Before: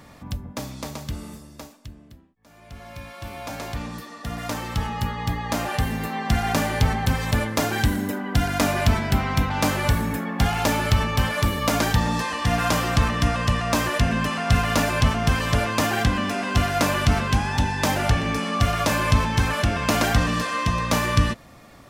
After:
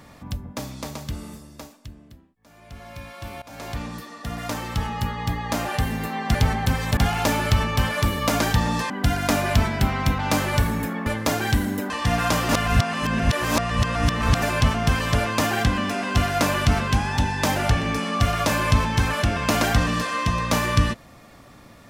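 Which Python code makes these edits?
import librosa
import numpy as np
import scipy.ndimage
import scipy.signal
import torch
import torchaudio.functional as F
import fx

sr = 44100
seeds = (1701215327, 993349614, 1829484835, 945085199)

y = fx.edit(x, sr, fx.fade_in_from(start_s=3.42, length_s=0.29, floor_db=-19.5),
    fx.cut(start_s=6.35, length_s=0.4),
    fx.swap(start_s=7.37, length_s=0.84, other_s=10.37, other_length_s=1.93),
    fx.reverse_span(start_s=12.89, length_s=1.93), tone=tone)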